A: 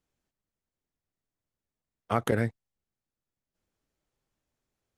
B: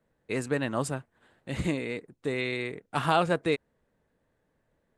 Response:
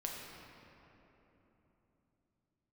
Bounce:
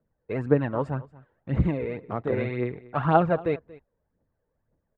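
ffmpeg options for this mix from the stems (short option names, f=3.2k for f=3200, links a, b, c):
-filter_complex "[0:a]adynamicsmooth=sensitivity=7:basefreq=510,volume=-3.5dB[a];[1:a]aphaser=in_gain=1:out_gain=1:delay=2.3:decay=0.54:speed=1.9:type=triangular,equalizer=f=77:w=0.71:g=2.5,volume=2.5dB,asplit=2[b][c];[c]volume=-21dB,aecho=0:1:232:1[d];[a][b][d]amix=inputs=3:normalize=0,lowpass=1.3k,agate=range=-8dB:threshold=-50dB:ratio=16:detection=peak"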